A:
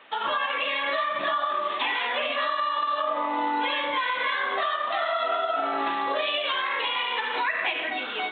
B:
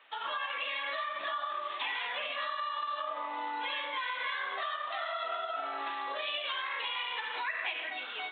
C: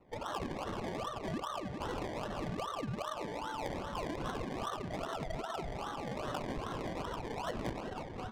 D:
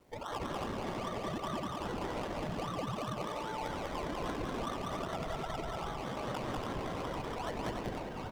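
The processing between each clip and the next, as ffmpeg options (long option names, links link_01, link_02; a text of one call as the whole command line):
ffmpeg -i in.wav -af "highpass=frequency=930:poles=1,volume=-7dB" out.wav
ffmpeg -i in.wav -af "acrusher=samples=26:mix=1:aa=0.000001:lfo=1:lforange=15.6:lforate=2.5,adynamicsmooth=sensitivity=5:basefreq=2300,volume=-2.5dB" out.wav
ffmpeg -i in.wav -filter_complex "[0:a]asplit=2[link_01][link_02];[link_02]aecho=0:1:195.3|285.7:0.794|0.501[link_03];[link_01][link_03]amix=inputs=2:normalize=0,acrusher=bits=10:mix=0:aa=0.000001,volume=-1.5dB" out.wav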